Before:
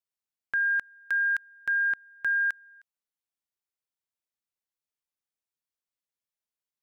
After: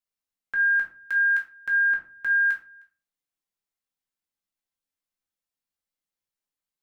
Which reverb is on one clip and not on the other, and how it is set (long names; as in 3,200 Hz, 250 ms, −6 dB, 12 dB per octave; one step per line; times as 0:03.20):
rectangular room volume 220 cubic metres, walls furnished, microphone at 2.1 metres
level −2.5 dB